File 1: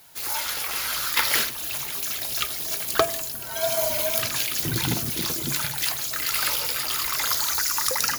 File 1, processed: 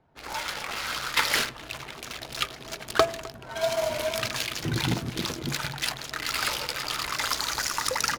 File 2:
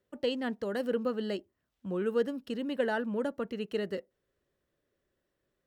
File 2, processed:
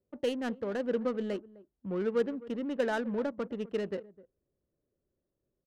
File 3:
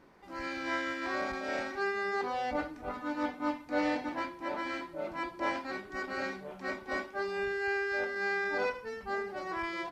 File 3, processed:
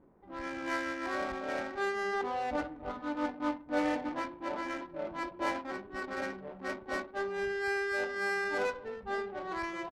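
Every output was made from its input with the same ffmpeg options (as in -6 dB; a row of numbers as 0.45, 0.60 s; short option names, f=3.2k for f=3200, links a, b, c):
-filter_complex "[0:a]asplit=2[a][b];[b]adelay=256.6,volume=-19dB,highshelf=f=4k:g=-5.77[c];[a][c]amix=inputs=2:normalize=0,adynamicsmooth=sensitivity=6.5:basefreq=650"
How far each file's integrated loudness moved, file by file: -5.0, 0.0, -0.5 LU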